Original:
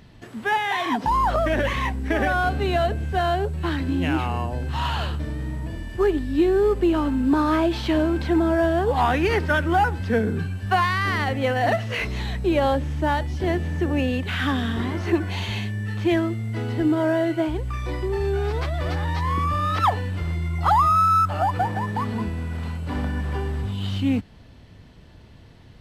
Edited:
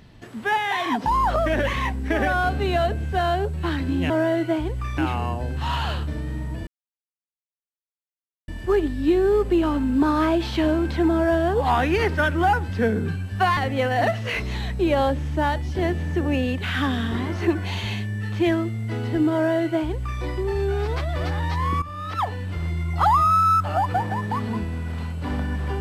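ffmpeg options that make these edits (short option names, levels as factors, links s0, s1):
-filter_complex "[0:a]asplit=6[s0][s1][s2][s3][s4][s5];[s0]atrim=end=4.102[s6];[s1]atrim=start=16.988:end=17.872[s7];[s2]atrim=start=4.098:end=5.79,asetpts=PTS-STARTPTS,afade=t=out:st=1.688:d=0.004:c=hsin,apad=pad_dur=1.81[s8];[s3]atrim=start=5.79:end=10.882,asetpts=PTS-STARTPTS,afade=t=in:d=0.004:c=hsin[s9];[s4]atrim=start=11.218:end=19.47,asetpts=PTS-STARTPTS,afade=t=out:st=8.248:d=0.004:c=hsin:silence=0.199526[s10];[s5]atrim=start=19.47,asetpts=PTS-STARTPTS,afade=t=in:d=0.89:silence=0.199526[s11];[s6][s7]acrossfade=d=0.004:c1=hsin:c2=hsin[s12];[s8][s9]concat=n=2:v=0:a=1[s13];[s12][s13]acrossfade=d=0.004:c1=hsin:c2=hsin[s14];[s10][s11]concat=n=2:v=0:a=1[s15];[s14][s15]acrossfade=d=0.004:c1=hsin:c2=hsin"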